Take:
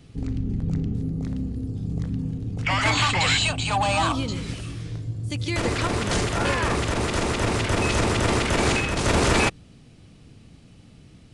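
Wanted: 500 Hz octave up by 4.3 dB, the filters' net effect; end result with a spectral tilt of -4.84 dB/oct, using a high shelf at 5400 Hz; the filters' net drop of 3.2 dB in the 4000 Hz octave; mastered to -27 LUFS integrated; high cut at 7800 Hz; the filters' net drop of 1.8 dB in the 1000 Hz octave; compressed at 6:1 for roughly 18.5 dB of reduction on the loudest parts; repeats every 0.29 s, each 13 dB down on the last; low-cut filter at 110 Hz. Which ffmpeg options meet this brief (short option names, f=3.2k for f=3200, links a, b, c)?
-af "highpass=110,lowpass=7.8k,equalizer=f=500:t=o:g=6.5,equalizer=f=1k:t=o:g=-4.5,equalizer=f=4k:t=o:g=-7,highshelf=f=5.4k:g=8,acompressor=threshold=-37dB:ratio=6,aecho=1:1:290|580|870:0.224|0.0493|0.0108,volume=12dB"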